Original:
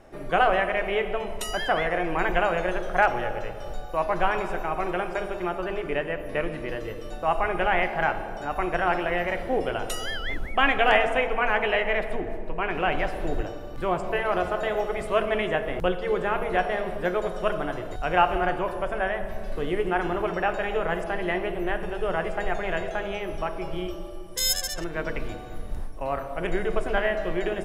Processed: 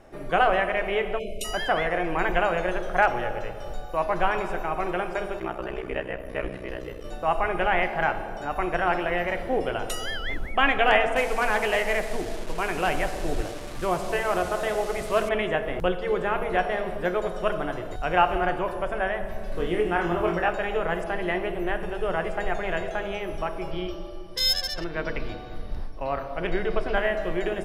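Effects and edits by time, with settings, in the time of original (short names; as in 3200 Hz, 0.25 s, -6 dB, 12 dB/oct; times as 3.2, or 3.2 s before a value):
1.19–1.45 spectral delete 670–2100 Hz
5.39–7.05 ring modulator 31 Hz
11.16–15.29 delta modulation 64 kbps, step -33.5 dBFS
19.52–20.49 flutter echo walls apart 4 m, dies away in 0.28 s
23.71–26.95 resonant high shelf 6000 Hz -7 dB, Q 3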